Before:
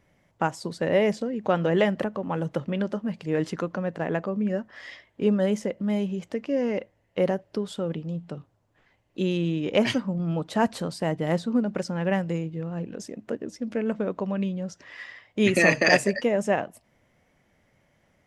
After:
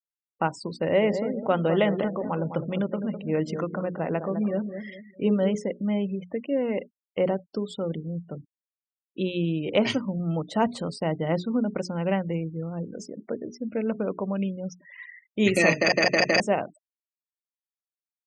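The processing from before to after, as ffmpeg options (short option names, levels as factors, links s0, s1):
-filter_complex "[0:a]asettb=1/sr,asplit=3[s0][s1][s2];[s0]atrim=end=0.754[s3];[s1]atrim=start=0.75:end=5.55,asetpts=PTS-STARTPTS,afade=t=in:d=0.004:c=qsin,afade=t=out:st=4.796:d=0.004:c=qsin,asplit=2[s4][s5];[s5]adelay=206,lowpass=f=1300:p=1,volume=0.398,asplit=2[s6][s7];[s7]adelay=206,lowpass=f=1300:p=1,volume=0.38,asplit=2[s8][s9];[s9]adelay=206,lowpass=f=1300:p=1,volume=0.38,asplit=2[s10][s11];[s11]adelay=206,lowpass=f=1300:p=1,volume=0.38[s12];[s4][s6][s8][s10][s12]amix=inputs=5:normalize=0,atrim=end_sample=211680[s13];[s2]atrim=start=5.546[s14];[s3][s13]acrossfade=d=0.004:c1=hsin:c2=qsin[s15];[s15][s14]acrossfade=d=0.004:c1=qsin:c2=hsin,asplit=5[s16][s17][s18][s19][s20];[s16]atrim=end=15.922[s21];[s17]atrim=start=15.758:end=15.922[s22];[s18]atrim=start=15.758:end=15.922[s23];[s19]atrim=start=15.758:end=15.922[s24];[s20]atrim=start=16.398[s25];[s21][s22]acrossfade=d=0.004:c1=hsin:c2=hsin[s26];[s26][s23]acrossfade=d=0.004:c1=hsin:c2=hsin[s27];[s27][s24]acrossfade=d=0.004:c1=hsin:c2=hsin[s28];[s28][s25]acrossfade=d=0.004:c1=hsin:c2=hsin,bandreject=f=60:t=h:w=6,bandreject=f=120:t=h:w=6,bandreject=f=180:t=h:w=6,bandreject=f=240:t=h:w=6,bandreject=f=300:t=h:w=6,bandreject=f=360:t=h:w=6,bandreject=f=420:t=h:w=6,afftfilt=real='re*gte(hypot(re,im),0.0112)':imag='im*gte(hypot(re,im),0.0112)':win_size=1024:overlap=0.75,bandreject=f=1700:w=7.1"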